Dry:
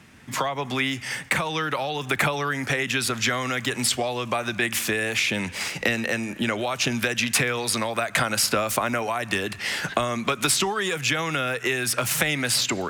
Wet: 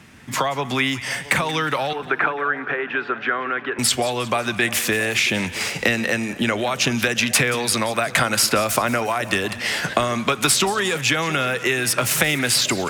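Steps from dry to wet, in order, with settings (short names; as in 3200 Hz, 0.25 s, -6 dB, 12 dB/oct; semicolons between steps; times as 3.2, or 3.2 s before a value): 1.93–3.79 speaker cabinet 380–2200 Hz, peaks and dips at 380 Hz +4 dB, 580 Hz -6 dB, 840 Hz -3 dB, 1500 Hz +5 dB, 2100 Hz -7 dB; split-band echo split 850 Hz, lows 0.671 s, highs 0.18 s, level -16 dB; gain +4 dB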